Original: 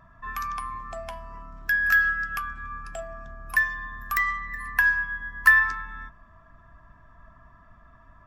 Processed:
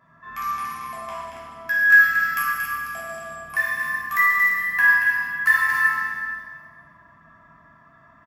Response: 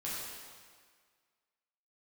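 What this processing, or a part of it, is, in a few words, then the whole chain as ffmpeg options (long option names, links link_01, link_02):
stadium PA: -filter_complex "[0:a]asettb=1/sr,asplit=3[link_01][link_02][link_03];[link_01]atrim=end=2.094[link_04];[link_02]atrim=start=2.09:end=2.91,asetpts=PTS-STARTPTS,afade=type=in:duration=0.004:curve=qsin,afade=type=out:start_time=0.816:duration=0.004:curve=qsin,aemphasis=mode=production:type=50kf[link_05];[link_03]atrim=start=2.906[link_06];[link_04][link_05]acrossfade=duration=0.004:curve1=hsin:curve2=qsin[link_07];[link_07][link_06]acrossfade=duration=0.004:curve1=qsin:curve2=hsin,highpass=140,equalizer=frequency=2000:width_type=o:width=0.22:gain=6.5,aecho=1:1:230.3|279.9:0.501|0.316[link_08];[1:a]atrim=start_sample=2205[link_09];[link_08][link_09]afir=irnorm=-1:irlink=0"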